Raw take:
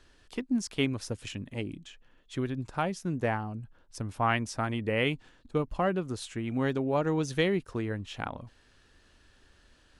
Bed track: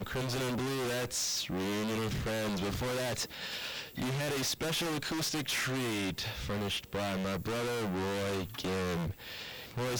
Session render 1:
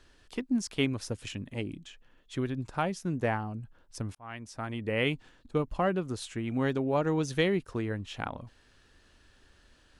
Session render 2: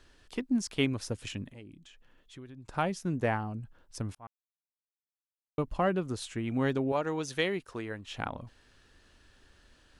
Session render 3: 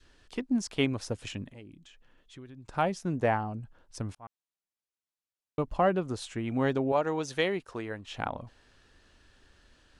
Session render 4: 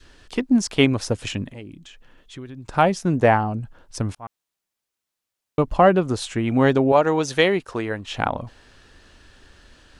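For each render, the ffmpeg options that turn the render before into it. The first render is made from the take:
-filter_complex "[0:a]asplit=2[a][b];[a]atrim=end=4.15,asetpts=PTS-STARTPTS,afade=t=out:st=4.146:d=0.004:c=hsin[c];[b]atrim=start=4.15,asetpts=PTS-STARTPTS,afade=t=in:d=0.94[d];[c][d]concat=n=2:v=0:a=1"
-filter_complex "[0:a]asettb=1/sr,asplit=3[a][b][c];[a]atrim=end=1.514[d];[b]atrim=start=1.51:end=2.69,asetpts=PTS-STARTPTS,afade=t=in:d=0.004:c=qsin,afade=t=out:st=1.176:d=0.004:c=qsin,acompressor=threshold=-56dB:ratio=2:attack=3.2:release=140:knee=1:detection=peak[e];[c]atrim=start=2.686[f];[d][e]acrossfade=d=0.004:c1=hsin:c2=qsin[g];[g][f]acrossfade=d=0.004:c1=qsin:c2=hsin,asettb=1/sr,asplit=3[h][i][j];[h]atrim=end=6.924[k];[i]atrim=start=6.92:end=8.08,asetpts=PTS-STARTPTS,afade=t=in:d=0.004:c=qsin,afade=t=out:st=1.156:d=0.004:c=qsin,lowshelf=f=310:g=-11[l];[j]atrim=start=8.076[m];[k][l]acrossfade=d=0.004:c1=hsin:c2=qsin[n];[n][m]acrossfade=d=0.004:c1=qsin:c2=hsin,asplit=3[o][p][q];[o]atrim=end=4.27,asetpts=PTS-STARTPTS,afade=t=out:st=4.266:d=0.004:c=hsin[r];[p]atrim=start=4.27:end=5.58,asetpts=PTS-STARTPTS,volume=0[s];[q]atrim=start=5.58,asetpts=PTS-STARTPTS,afade=t=in:d=0.004:c=hsin[t];[r][s][t]concat=n=3:v=0:a=1"
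-af "lowpass=10k,adynamicequalizer=threshold=0.00708:dfrequency=710:dqfactor=1.1:tfrequency=710:tqfactor=1.1:attack=5:release=100:ratio=0.375:range=2.5:mode=boostabove:tftype=bell"
-af "volume=10.5dB"

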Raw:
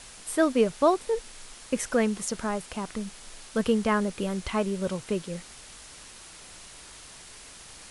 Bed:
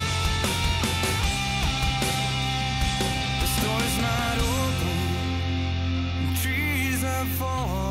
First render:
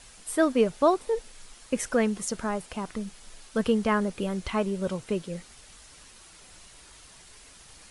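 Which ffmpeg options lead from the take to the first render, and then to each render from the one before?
-af "afftdn=nr=6:nf=-47"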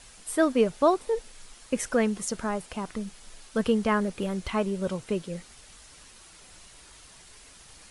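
-filter_complex "[0:a]asettb=1/sr,asplit=3[a][b][c];[a]atrim=end=4.014[d];[b]atrim=start=4.01:end=4.52,asetpts=PTS-STARTPTS,afade=t=in:d=0.004:c=qsin,afade=t=out:st=0.506:d=0.004:c=qsin,volume=22dB,asoftclip=hard,volume=-22dB[e];[c]atrim=start=4.516[f];[d][e]acrossfade=d=0.004:c1=hsin:c2=qsin[g];[g][f]acrossfade=d=0.004:c1=qsin:c2=hsin"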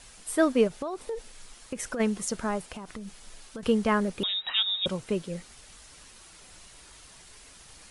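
-filter_complex "[0:a]asplit=3[a][b][c];[a]afade=t=out:st=0.67:d=0.02[d];[b]acompressor=threshold=-29dB:ratio=10:attack=3.2:release=140:knee=1:detection=peak,afade=t=in:st=0.67:d=0.02,afade=t=out:st=1.99:d=0.02[e];[c]afade=t=in:st=1.99:d=0.02[f];[d][e][f]amix=inputs=3:normalize=0,asettb=1/sr,asplit=3[g][h][i];[g]atrim=end=2.714[j];[h]atrim=start=2.71:end=3.63,asetpts=PTS-STARTPTS,afade=t=in:d=0.004:c=qsin,afade=t=out:st=0.916:d=0.004:c=qsin,acompressor=threshold=-35dB:ratio=10:attack=3.2:release=140:knee=1:detection=peak[k];[i]atrim=start=3.626[l];[j][k]acrossfade=d=0.004:c1=hsin:c2=qsin[m];[m][l]acrossfade=d=0.004:c1=qsin:c2=hsin,asettb=1/sr,asplit=3[n][o][p];[n]atrim=end=4.234[q];[o]atrim=start=4.23:end=4.86,asetpts=PTS-STARTPTS,afade=t=in:d=0.004:c=qsin,afade=t=out:st=0.626:d=0.004:c=qsin,lowpass=f=3.3k:t=q:w=0.5098,lowpass=f=3.3k:t=q:w=0.6013,lowpass=f=3.3k:t=q:w=0.9,lowpass=f=3.3k:t=q:w=2.563,afreqshift=-3900[r];[p]atrim=start=4.856[s];[q][r]acrossfade=d=0.004:c1=hsin:c2=qsin[t];[t][s]acrossfade=d=0.004:c1=qsin:c2=hsin"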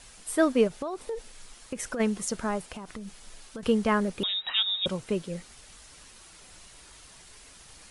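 -af anull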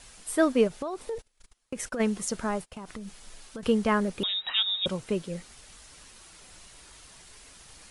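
-filter_complex "[0:a]asettb=1/sr,asplit=3[a][b][c];[a]atrim=end=1.184[d];[b]atrim=start=1.18:end=2.86,asetpts=PTS-STARTPTS,afade=t=in:d=0.004:c=qsin,afade=t=out:st=1.676:d=0.004:c=qsin,agate=range=-26dB:threshold=-43dB:ratio=16:release=100:detection=peak[e];[c]atrim=start=2.856[f];[d][e]acrossfade=d=0.004:c1=hsin:c2=qsin[g];[g][f]acrossfade=d=0.004:c1=qsin:c2=hsin"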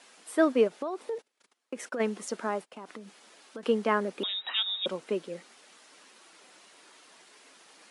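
-af "highpass=f=250:w=0.5412,highpass=f=250:w=1.3066,highshelf=f=5.3k:g=-11.5"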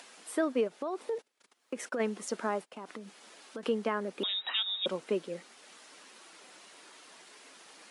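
-af "alimiter=limit=-20dB:level=0:latency=1:release=366,acompressor=mode=upward:threshold=-49dB:ratio=2.5"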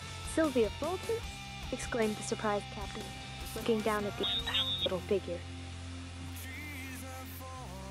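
-filter_complex "[1:a]volume=-18dB[a];[0:a][a]amix=inputs=2:normalize=0"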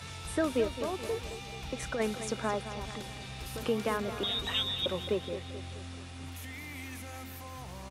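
-af "aecho=1:1:216|432|648|864|1080|1296:0.266|0.141|0.0747|0.0396|0.021|0.0111"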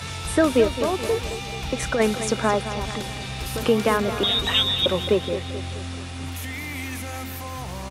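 -af "volume=11dB"

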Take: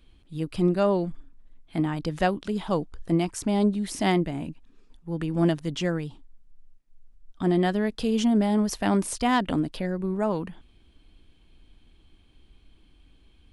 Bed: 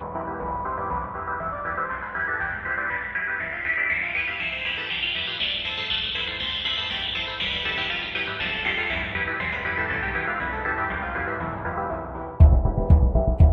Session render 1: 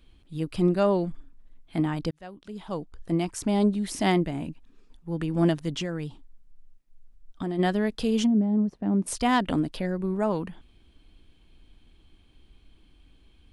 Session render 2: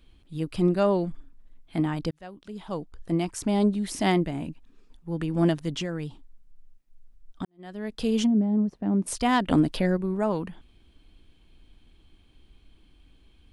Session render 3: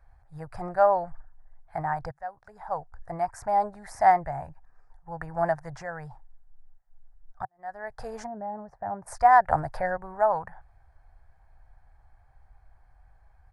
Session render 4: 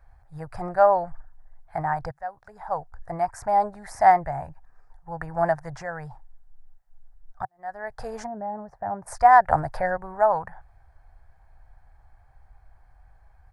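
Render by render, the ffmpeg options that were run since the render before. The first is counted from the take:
-filter_complex "[0:a]asplit=3[a][b][c];[a]afade=t=out:st=5.73:d=0.02[d];[b]acompressor=threshold=-26dB:ratio=6:attack=3.2:release=140:knee=1:detection=peak,afade=t=in:st=5.73:d=0.02,afade=t=out:st=7.58:d=0.02[e];[c]afade=t=in:st=7.58:d=0.02[f];[d][e][f]amix=inputs=3:normalize=0,asplit=3[g][h][i];[g]afade=t=out:st=8.25:d=0.02[j];[h]bandpass=f=200:t=q:w=1.1,afade=t=in:st=8.25:d=0.02,afade=t=out:st=9.06:d=0.02[k];[i]afade=t=in:st=9.06:d=0.02[l];[j][k][l]amix=inputs=3:normalize=0,asplit=2[m][n];[m]atrim=end=2.11,asetpts=PTS-STARTPTS,afade=t=out:st=2.106:d=0.004:c=hsin[o];[n]atrim=start=2.11,asetpts=PTS-STARTPTS,afade=t=in:d=1.39[p];[o][p]concat=n=2:v=0:a=1"
-filter_complex "[0:a]asettb=1/sr,asplit=3[a][b][c];[a]atrim=end=9.514[d];[b]atrim=start=9.51:end=9.97,asetpts=PTS-STARTPTS,afade=t=in:d=0.004:c=qsin,afade=t=out:st=0.456:d=0.004:c=qsin,acontrast=29[e];[c]atrim=start=9.966[f];[d][e]acrossfade=d=0.004:c1=hsin:c2=qsin[g];[g][f]acrossfade=d=0.004:c1=qsin:c2=hsin,asplit=2[h][i];[h]atrim=end=7.45,asetpts=PTS-STARTPTS,afade=t=out:st=7.446:d=0.004:c=hsin[j];[i]atrim=start=7.45,asetpts=PTS-STARTPTS,afade=t=in:d=0.61:c=qua[k];[j][k]concat=n=2:v=0:a=1"
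-af "firequalizer=gain_entry='entry(130,0);entry(190,-20);entry(280,-25);entry(550,0);entry(770,13);entry(1100,2);entry(1700,6);entry(3000,-30);entry(4800,-11)':delay=0.05:min_phase=1"
-af "volume=3dB"

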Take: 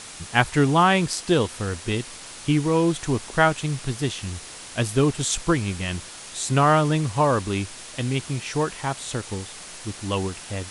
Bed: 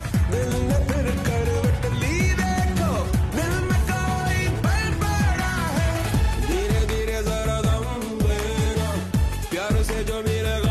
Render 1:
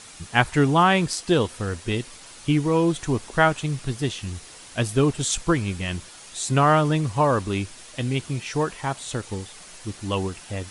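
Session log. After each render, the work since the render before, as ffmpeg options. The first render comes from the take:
-af "afftdn=nr=6:nf=-40"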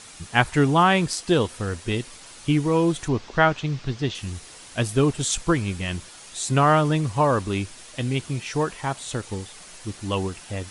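-filter_complex "[0:a]asettb=1/sr,asplit=3[a][b][c];[a]atrim=end=3.084[d];[b]atrim=start=3.08:end=4.15,asetpts=PTS-STARTPTS,afade=t=in:d=0.004:c=qsin,afade=t=out:st=1.066:d=0.004:c=qsin,lowpass=f=5.8k:w=0.5412,lowpass=f=5.8k:w=1.3066[e];[c]atrim=start=4.146[f];[d][e]acrossfade=d=0.004:c1=hsin:c2=qsin[g];[g][f]acrossfade=d=0.004:c1=qsin:c2=hsin"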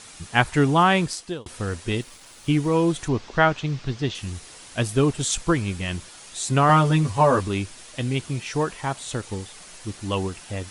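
-filter_complex "[0:a]asettb=1/sr,asplit=3[a][b][c];[a]atrim=end=2.014[d];[b]atrim=start=2.01:end=2.74,asetpts=PTS-STARTPTS,afade=t=in:d=0.004:c=qsin,afade=t=out:st=0.726:d=0.004:c=qsin,aeval=exprs='sgn(val(0))*max(abs(val(0))-0.00237,0)':c=same[e];[c]atrim=start=2.736[f];[d][e]acrossfade=d=0.004:c1=hsin:c2=qsin[g];[g][f]acrossfade=d=0.004:c1=qsin:c2=hsin,asettb=1/sr,asplit=3[h][i][j];[h]atrim=end=6.684[k];[i]atrim=start=6.68:end=7.48,asetpts=PTS-STARTPTS,afade=t=in:d=0.004:c=qsin,afade=t=out:st=0.796:d=0.004:c=qsin,asplit=2[l][m];[m]adelay=12,volume=-2.5dB[n];[l][n]amix=inputs=2:normalize=0,atrim=end_sample=35280[o];[j]atrim=start=7.476[p];[k][o]acrossfade=d=0.004:c1=hsin:c2=qsin[q];[q][p]acrossfade=d=0.004:c1=qsin:c2=hsin,asplit=2[r][s];[r]atrim=end=1.46,asetpts=PTS-STARTPTS,afade=t=out:st=1:d=0.46[t];[s]atrim=start=1.46,asetpts=PTS-STARTPTS,afade=t=in:d=0.004:c=hsin[u];[t][u]concat=n=2:v=0:a=1"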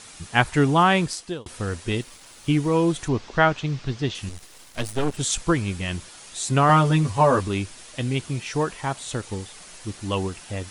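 -filter_complex "[0:a]asettb=1/sr,asplit=3[a][b][c];[a]atrim=end=4.294[d];[b]atrim=start=4.29:end=5.17,asetpts=PTS-STARTPTS,afade=t=in:d=0.004:c=qsin,afade=t=out:st=0.876:d=0.004:c=qsin,aeval=exprs='max(val(0),0)':c=same[e];[c]atrim=start=5.166[f];[d][e]acrossfade=d=0.004:c1=hsin:c2=qsin[g];[g][f]acrossfade=d=0.004:c1=qsin:c2=hsin"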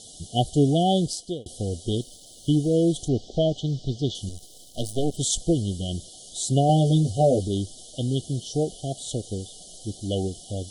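-af "afftfilt=real='re*(1-between(b*sr/4096,780,2900))':imag='im*(1-between(b*sr/4096,780,2900))':win_size=4096:overlap=0.75"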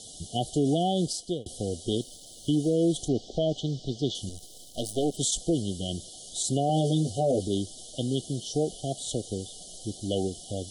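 -filter_complex "[0:a]acrossover=split=180[a][b];[a]acompressor=threshold=-37dB:ratio=6[c];[b]alimiter=limit=-17.5dB:level=0:latency=1:release=24[d];[c][d]amix=inputs=2:normalize=0"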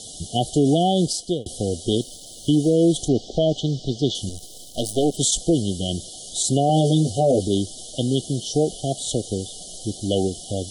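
-af "volume=7dB"

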